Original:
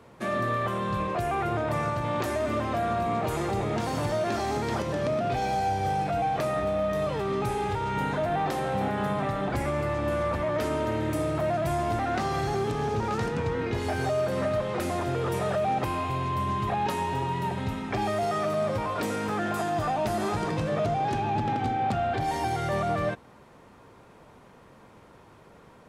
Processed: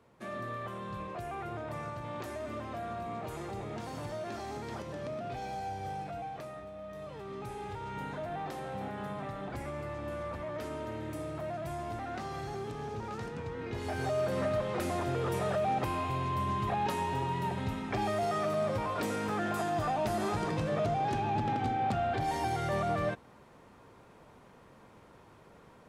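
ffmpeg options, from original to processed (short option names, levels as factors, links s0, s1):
-af "volume=1.5,afade=t=out:st=5.96:d=0.75:silence=0.421697,afade=t=in:st=6.71:d=1.16:silence=0.398107,afade=t=in:st=13.56:d=0.7:silence=0.446684"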